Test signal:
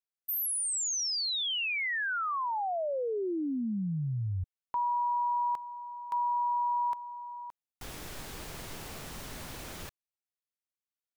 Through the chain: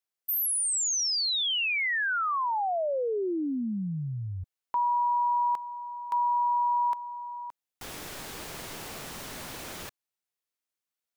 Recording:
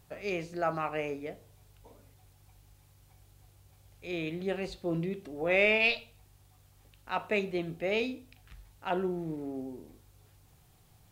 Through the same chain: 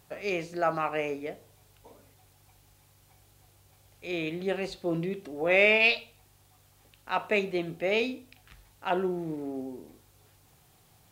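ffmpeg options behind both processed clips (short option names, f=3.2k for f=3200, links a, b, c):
-af "lowshelf=f=120:g=-11,volume=4dB"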